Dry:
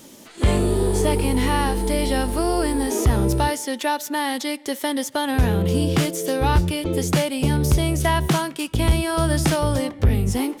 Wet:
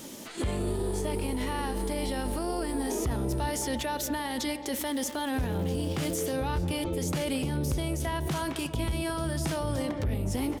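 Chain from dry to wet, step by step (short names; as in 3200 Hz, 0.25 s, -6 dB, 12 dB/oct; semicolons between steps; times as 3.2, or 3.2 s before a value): 4.76–6.16 crackle 390/s -31 dBFS; speakerphone echo 0.22 s, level -19 dB; in parallel at -3 dB: negative-ratio compressor -29 dBFS, ratio -1; on the sum: limiter -15.5 dBFS, peak gain reduction 8.5 dB; on a send: analogue delay 0.351 s, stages 2048, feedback 64%, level -11 dB; on the sum: gain -7 dB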